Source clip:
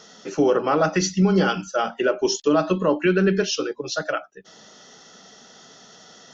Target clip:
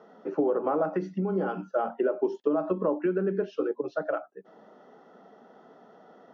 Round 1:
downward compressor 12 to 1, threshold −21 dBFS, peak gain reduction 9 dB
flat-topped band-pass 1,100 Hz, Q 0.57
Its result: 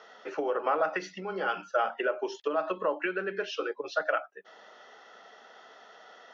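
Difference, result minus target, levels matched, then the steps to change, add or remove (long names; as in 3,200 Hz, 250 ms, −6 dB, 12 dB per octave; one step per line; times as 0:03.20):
1,000 Hz band +5.0 dB
change: flat-topped band-pass 480 Hz, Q 0.57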